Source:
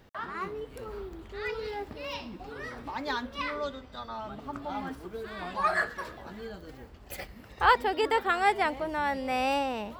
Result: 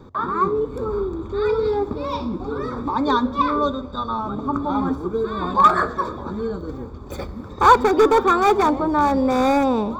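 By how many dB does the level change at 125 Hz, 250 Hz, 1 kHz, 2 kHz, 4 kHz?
+15.0, +16.5, +11.0, +2.5, +4.5 decibels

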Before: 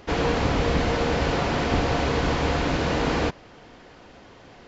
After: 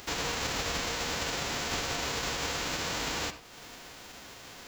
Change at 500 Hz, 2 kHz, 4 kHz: −13.5, −5.0, −0.5 decibels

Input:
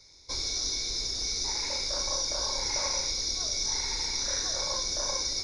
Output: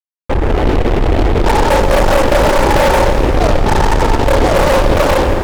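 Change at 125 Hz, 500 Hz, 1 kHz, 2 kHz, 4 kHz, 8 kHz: +31.0, +29.5, +27.5, +22.0, +3.0, −0.5 decibels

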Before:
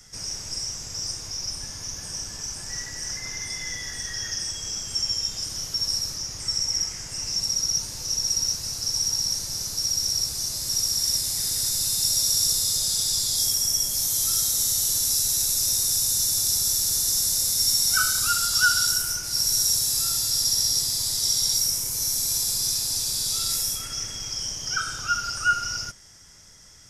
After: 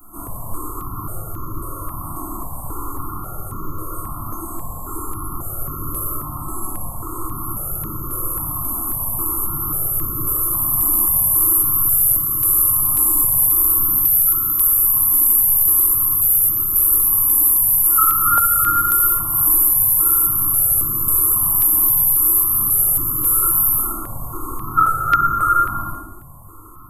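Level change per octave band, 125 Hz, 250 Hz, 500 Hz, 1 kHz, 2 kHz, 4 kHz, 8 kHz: +10.0 dB, +14.0 dB, +10.0 dB, +13.0 dB, can't be measured, below −30 dB, +3.0 dB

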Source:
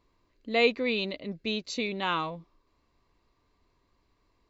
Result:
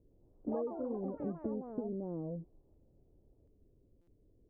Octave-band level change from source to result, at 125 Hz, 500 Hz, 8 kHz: −2.0 dB, −9.0 dB, can't be measured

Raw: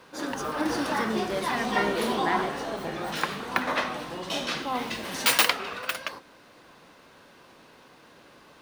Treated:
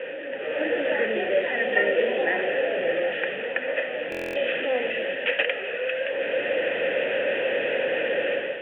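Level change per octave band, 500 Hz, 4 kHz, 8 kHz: +10.0 dB, −3.0 dB, below −25 dB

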